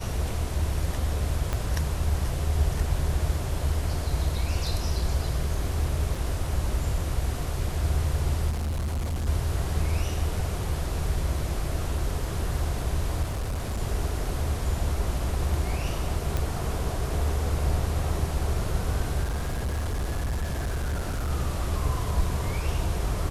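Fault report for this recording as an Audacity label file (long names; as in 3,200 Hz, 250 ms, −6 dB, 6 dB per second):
1.530000	1.530000	click −14 dBFS
6.150000	6.150000	drop-out 4.4 ms
8.490000	9.280000	clipping −25.5 dBFS
13.220000	13.800000	clipping −25.5 dBFS
16.370000	16.370000	click
19.230000	21.310000	clipping −24.5 dBFS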